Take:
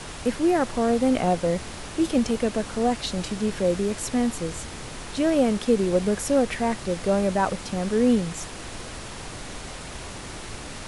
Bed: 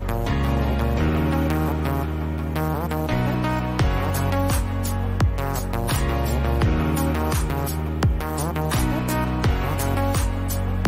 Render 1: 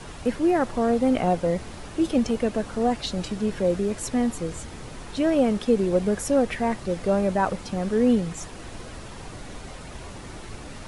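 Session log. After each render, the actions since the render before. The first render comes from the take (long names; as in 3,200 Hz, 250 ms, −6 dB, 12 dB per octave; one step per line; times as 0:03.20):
broadband denoise 7 dB, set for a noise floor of −38 dBFS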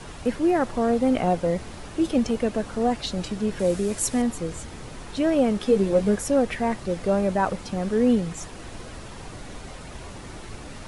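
0:03.59–0:04.22: high-shelf EQ 6,200 Hz +12 dB
0:05.59–0:06.16: double-tracking delay 15 ms −5 dB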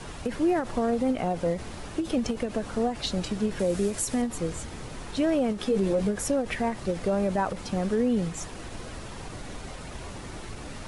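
brickwall limiter −17 dBFS, peak gain reduction 8 dB
every ending faded ahead of time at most 160 dB per second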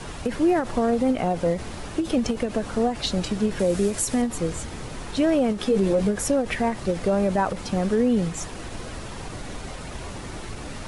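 level +4 dB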